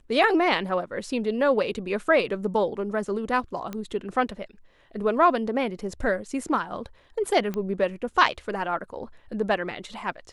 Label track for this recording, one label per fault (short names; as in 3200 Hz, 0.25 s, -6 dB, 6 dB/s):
3.730000	3.730000	pop -19 dBFS
7.540000	7.540000	pop -18 dBFS